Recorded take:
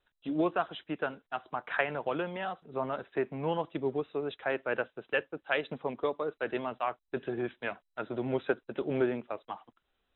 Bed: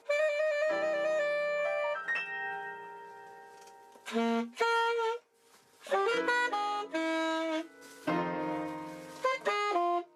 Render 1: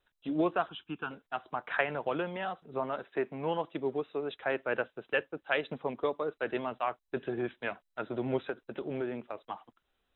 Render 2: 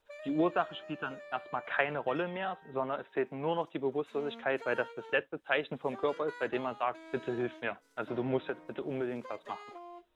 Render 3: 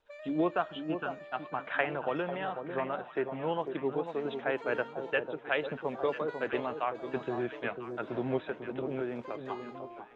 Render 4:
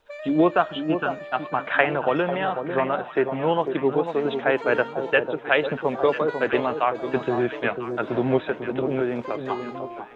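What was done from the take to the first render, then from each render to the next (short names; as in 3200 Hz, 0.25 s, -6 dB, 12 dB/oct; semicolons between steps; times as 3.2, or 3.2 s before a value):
0.69–1.11 fixed phaser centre 2900 Hz, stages 8; 2.8–4.33 low shelf 120 Hz -10.5 dB; 8.39–9.44 compressor 2:1, threshold -35 dBFS
add bed -18.5 dB
air absorption 73 m; echo with dull and thin repeats by turns 0.496 s, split 1000 Hz, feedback 59%, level -7 dB
gain +10.5 dB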